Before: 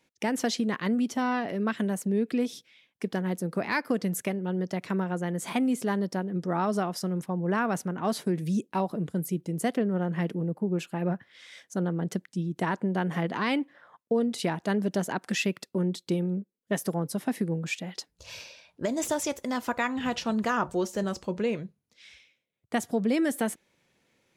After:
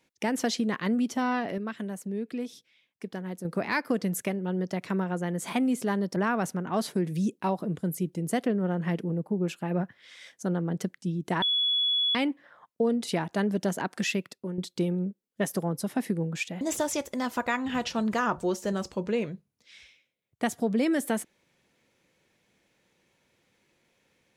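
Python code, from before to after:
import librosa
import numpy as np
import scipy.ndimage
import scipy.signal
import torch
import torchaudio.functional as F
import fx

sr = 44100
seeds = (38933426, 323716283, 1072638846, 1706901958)

y = fx.edit(x, sr, fx.clip_gain(start_s=1.58, length_s=1.87, db=-6.5),
    fx.cut(start_s=6.16, length_s=1.31),
    fx.bleep(start_s=12.73, length_s=0.73, hz=3390.0, db=-22.5),
    fx.fade_out_to(start_s=15.33, length_s=0.56, floor_db=-9.5),
    fx.cut(start_s=17.92, length_s=1.0), tone=tone)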